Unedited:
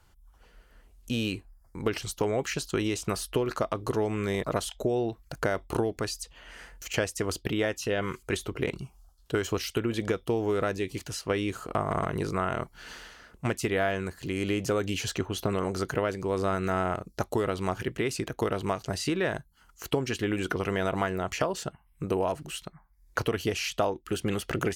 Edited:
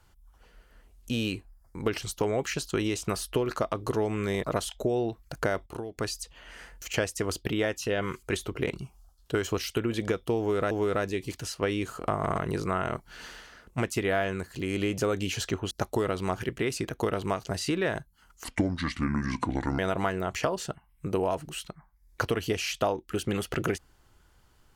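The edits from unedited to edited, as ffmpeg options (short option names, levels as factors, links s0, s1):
-filter_complex "[0:a]asplit=7[s0][s1][s2][s3][s4][s5][s6];[s0]atrim=end=5.662[s7];[s1]atrim=start=5.658:end=5.982,asetpts=PTS-STARTPTS,volume=0.335[s8];[s2]atrim=start=5.978:end=10.712[s9];[s3]atrim=start=10.378:end=15.382[s10];[s4]atrim=start=17.098:end=19.834[s11];[s5]atrim=start=19.83:end=20.76,asetpts=PTS-STARTPTS,asetrate=30429,aresample=44100,atrim=end_sample=59439,asetpts=PTS-STARTPTS[s12];[s6]atrim=start=20.756[s13];[s7][s8]acrossfade=d=0.004:c1=hsin:c2=hsin[s14];[s14][s9]acrossfade=d=0.004:c1=hsin:c2=hsin[s15];[s15][s10]acrossfade=d=0.004:c1=hsin:c2=hsin[s16];[s16][s11]acrossfade=d=0.004:c1=hsin:c2=hsin[s17];[s17][s12]acrossfade=d=0.004:c1=hsin:c2=hsin[s18];[s18][s13]acrossfade=d=0.004:c1=hsin:c2=hsin"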